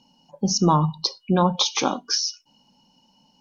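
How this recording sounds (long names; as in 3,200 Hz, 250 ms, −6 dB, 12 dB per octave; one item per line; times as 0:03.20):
background noise floor −63 dBFS
spectral slope −4.0 dB per octave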